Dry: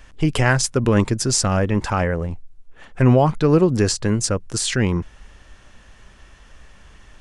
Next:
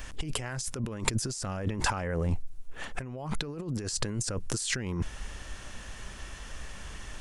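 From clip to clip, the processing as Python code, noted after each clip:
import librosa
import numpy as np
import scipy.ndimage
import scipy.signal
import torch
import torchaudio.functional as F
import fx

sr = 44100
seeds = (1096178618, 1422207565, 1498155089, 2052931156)

y = fx.high_shelf(x, sr, hz=6400.0, db=10.0)
y = fx.over_compress(y, sr, threshold_db=-28.0, ratio=-1.0)
y = F.gain(torch.from_numpy(y), -4.5).numpy()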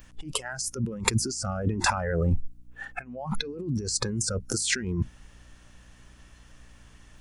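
y = fx.add_hum(x, sr, base_hz=60, snr_db=11)
y = fx.noise_reduce_blind(y, sr, reduce_db=17)
y = F.gain(torch.from_numpy(y), 5.0).numpy()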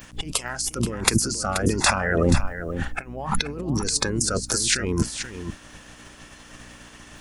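y = fx.spec_clip(x, sr, under_db=17)
y = y + 10.0 ** (-10.0 / 20.0) * np.pad(y, (int(480 * sr / 1000.0), 0))[:len(y)]
y = F.gain(torch.from_numpy(y), 5.0).numpy()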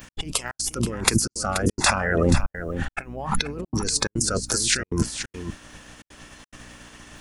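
y = fx.step_gate(x, sr, bpm=177, pattern='x.xxxx.xxxxxxx', floor_db=-60.0, edge_ms=4.5)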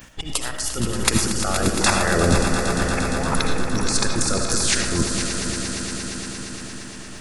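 y = fx.echo_swell(x, sr, ms=116, loudest=5, wet_db=-12)
y = fx.rev_freeverb(y, sr, rt60_s=0.85, hf_ratio=0.4, predelay_ms=40, drr_db=4.0)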